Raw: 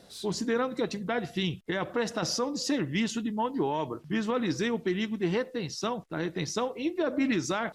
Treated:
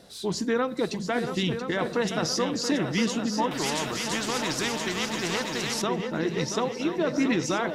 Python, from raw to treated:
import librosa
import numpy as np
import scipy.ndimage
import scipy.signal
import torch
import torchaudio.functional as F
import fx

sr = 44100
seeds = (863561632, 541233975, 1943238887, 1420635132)

y = fx.echo_heads(x, sr, ms=340, heads='second and third', feedback_pct=54, wet_db=-9.0)
y = fx.spectral_comp(y, sr, ratio=2.0, at=(3.51, 5.82))
y = y * 10.0 ** (2.5 / 20.0)